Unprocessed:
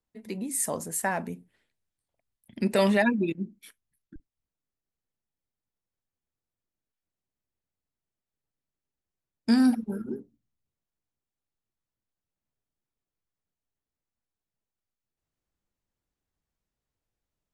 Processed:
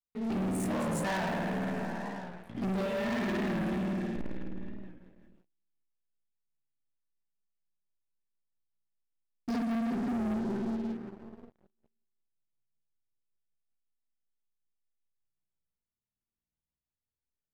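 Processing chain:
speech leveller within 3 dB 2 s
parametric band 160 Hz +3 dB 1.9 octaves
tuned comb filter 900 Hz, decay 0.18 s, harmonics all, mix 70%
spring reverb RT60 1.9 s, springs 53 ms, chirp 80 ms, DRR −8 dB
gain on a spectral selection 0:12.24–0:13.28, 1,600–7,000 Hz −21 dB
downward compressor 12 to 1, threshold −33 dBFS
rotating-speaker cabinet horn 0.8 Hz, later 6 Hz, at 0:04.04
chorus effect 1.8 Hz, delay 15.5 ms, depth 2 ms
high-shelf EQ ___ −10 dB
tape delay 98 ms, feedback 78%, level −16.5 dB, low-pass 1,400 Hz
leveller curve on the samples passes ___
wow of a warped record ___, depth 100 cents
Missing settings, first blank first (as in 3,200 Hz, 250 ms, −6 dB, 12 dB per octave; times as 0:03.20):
5,600 Hz, 5, 45 rpm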